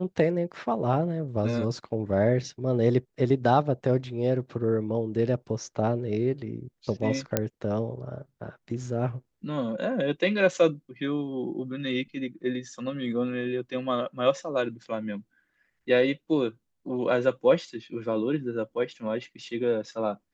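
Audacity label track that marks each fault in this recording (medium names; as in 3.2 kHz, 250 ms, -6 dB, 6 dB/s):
7.370000	7.370000	pop -7 dBFS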